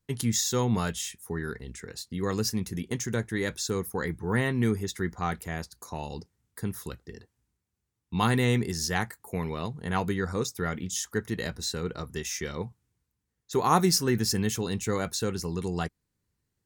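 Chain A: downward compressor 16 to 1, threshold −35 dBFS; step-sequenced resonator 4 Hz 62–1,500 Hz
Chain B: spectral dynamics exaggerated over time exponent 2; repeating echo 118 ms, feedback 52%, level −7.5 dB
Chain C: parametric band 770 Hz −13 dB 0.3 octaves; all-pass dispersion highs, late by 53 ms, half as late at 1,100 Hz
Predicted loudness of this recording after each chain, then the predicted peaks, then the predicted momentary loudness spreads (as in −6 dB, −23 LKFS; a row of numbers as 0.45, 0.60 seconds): −52.5, −33.5, −30.0 LKFS; −28.5, −12.0, −10.5 dBFS; 11, 19, 13 LU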